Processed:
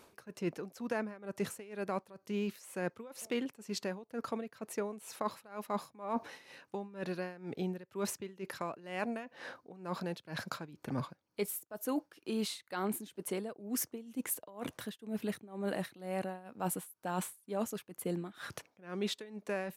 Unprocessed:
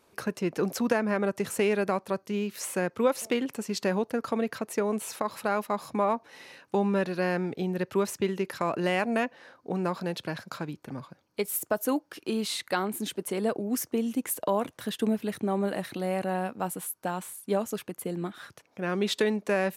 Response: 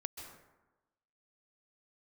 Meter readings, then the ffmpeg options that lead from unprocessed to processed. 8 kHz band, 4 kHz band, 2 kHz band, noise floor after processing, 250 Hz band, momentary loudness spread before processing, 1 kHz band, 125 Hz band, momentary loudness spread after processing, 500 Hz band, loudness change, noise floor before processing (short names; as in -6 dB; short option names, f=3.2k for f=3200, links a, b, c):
-6.5 dB, -8.5 dB, -10.5 dB, -76 dBFS, -9.5 dB, 9 LU, -9.5 dB, -8.5 dB, 7 LU, -11.0 dB, -9.5 dB, -65 dBFS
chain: -af "areverse,acompressor=threshold=-39dB:ratio=8,areverse,tremolo=f=2.1:d=0.89,volume=7.5dB"